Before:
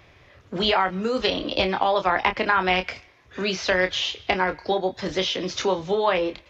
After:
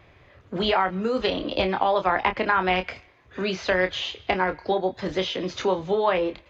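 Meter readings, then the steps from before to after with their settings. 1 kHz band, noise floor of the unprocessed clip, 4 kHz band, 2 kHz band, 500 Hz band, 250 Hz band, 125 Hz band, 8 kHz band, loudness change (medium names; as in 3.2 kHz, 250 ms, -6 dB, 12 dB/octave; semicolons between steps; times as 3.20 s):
-0.5 dB, -54 dBFS, -4.5 dB, -2.0 dB, 0.0 dB, 0.0 dB, 0.0 dB, no reading, -1.0 dB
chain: treble shelf 3.3 kHz -8.5 dB; band-stop 5.5 kHz, Q 11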